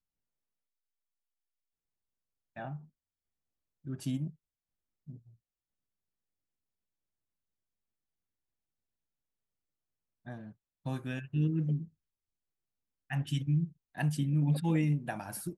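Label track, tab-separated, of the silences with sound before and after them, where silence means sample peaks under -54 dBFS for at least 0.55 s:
2.860000	3.850000	silence
4.330000	5.080000	silence
5.310000	10.260000	silence
11.880000	13.100000	silence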